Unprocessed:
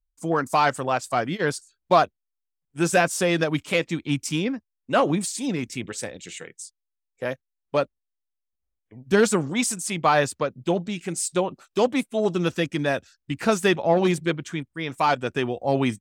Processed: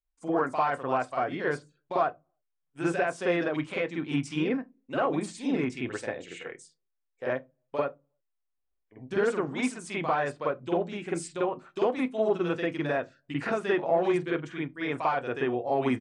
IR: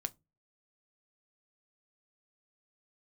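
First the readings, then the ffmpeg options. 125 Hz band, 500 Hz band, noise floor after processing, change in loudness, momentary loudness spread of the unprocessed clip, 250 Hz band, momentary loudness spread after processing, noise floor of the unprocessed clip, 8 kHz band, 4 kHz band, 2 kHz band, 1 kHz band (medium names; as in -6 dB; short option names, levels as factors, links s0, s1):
-8.5 dB, -4.5 dB, -80 dBFS, -5.5 dB, 12 LU, -5.0 dB, 7 LU, -82 dBFS, -16.0 dB, -11.0 dB, -6.0 dB, -6.0 dB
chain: -filter_complex "[0:a]bass=f=250:g=-9,treble=f=4000:g=-8,alimiter=limit=0.126:level=0:latency=1:release=397,asplit=2[s0][s1];[1:a]atrim=start_sample=2205,lowpass=2100,adelay=46[s2];[s1][s2]afir=irnorm=-1:irlink=0,volume=2.82[s3];[s0][s3]amix=inputs=2:normalize=0,aresample=22050,aresample=44100,volume=0.473"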